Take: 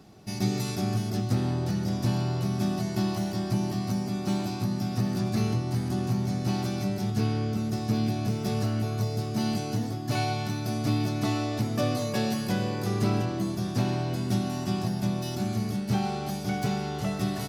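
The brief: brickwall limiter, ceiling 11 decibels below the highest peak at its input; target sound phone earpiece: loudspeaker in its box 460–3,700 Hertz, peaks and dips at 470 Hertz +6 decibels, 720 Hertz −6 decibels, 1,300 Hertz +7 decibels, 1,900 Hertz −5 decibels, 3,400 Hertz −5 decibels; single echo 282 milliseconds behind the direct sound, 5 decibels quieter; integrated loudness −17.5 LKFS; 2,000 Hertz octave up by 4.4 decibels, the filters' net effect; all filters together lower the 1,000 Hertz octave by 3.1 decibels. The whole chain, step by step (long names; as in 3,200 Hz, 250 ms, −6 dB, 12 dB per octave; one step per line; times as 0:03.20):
parametric band 1,000 Hz −4 dB
parametric band 2,000 Hz +8.5 dB
brickwall limiter −25 dBFS
loudspeaker in its box 460–3,700 Hz, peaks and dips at 470 Hz +6 dB, 720 Hz −6 dB, 1,300 Hz +7 dB, 1,900 Hz −5 dB, 3,400 Hz −5 dB
single-tap delay 282 ms −5 dB
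level +22.5 dB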